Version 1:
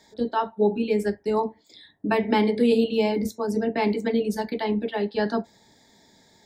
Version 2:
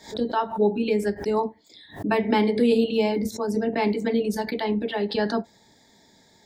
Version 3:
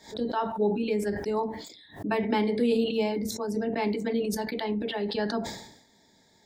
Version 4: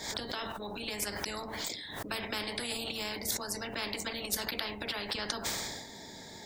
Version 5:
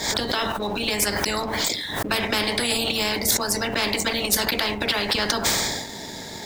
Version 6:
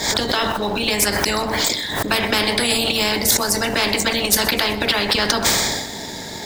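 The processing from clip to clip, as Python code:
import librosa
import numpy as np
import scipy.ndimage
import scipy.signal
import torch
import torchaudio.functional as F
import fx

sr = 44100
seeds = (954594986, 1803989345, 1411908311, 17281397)

y1 = fx.pre_swell(x, sr, db_per_s=150.0)
y2 = fx.sustainer(y1, sr, db_per_s=72.0)
y2 = y2 * 10.0 ** (-5.0 / 20.0)
y3 = fx.spectral_comp(y2, sr, ratio=4.0)
y4 = fx.leveller(y3, sr, passes=2)
y4 = y4 * 10.0 ** (6.0 / 20.0)
y5 = fx.echo_feedback(y4, sr, ms=127, feedback_pct=54, wet_db=-17.0)
y5 = y5 * 10.0 ** (4.5 / 20.0)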